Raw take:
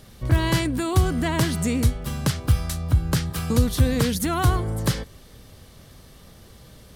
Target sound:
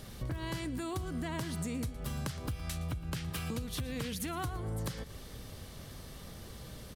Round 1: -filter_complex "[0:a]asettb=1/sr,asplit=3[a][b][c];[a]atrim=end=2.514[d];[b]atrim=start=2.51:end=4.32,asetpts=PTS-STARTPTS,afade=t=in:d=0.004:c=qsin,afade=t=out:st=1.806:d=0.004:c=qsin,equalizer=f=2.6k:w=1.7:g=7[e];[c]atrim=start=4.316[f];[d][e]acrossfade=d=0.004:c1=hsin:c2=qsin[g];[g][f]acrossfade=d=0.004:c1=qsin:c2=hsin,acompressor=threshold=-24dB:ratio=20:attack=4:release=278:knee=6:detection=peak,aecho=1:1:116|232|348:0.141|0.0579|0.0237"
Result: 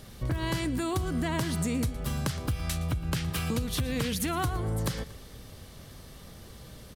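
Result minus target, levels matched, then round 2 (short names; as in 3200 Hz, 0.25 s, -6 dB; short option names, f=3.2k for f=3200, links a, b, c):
compressor: peak gain reduction -7.5 dB
-filter_complex "[0:a]asettb=1/sr,asplit=3[a][b][c];[a]atrim=end=2.514[d];[b]atrim=start=2.51:end=4.32,asetpts=PTS-STARTPTS,afade=t=in:d=0.004:c=qsin,afade=t=out:st=1.806:d=0.004:c=qsin,equalizer=f=2.6k:w=1.7:g=7[e];[c]atrim=start=4.316[f];[d][e]acrossfade=d=0.004:c1=hsin:c2=qsin[g];[g][f]acrossfade=d=0.004:c1=qsin:c2=hsin,acompressor=threshold=-32dB:ratio=20:attack=4:release=278:knee=6:detection=peak,aecho=1:1:116|232|348:0.141|0.0579|0.0237"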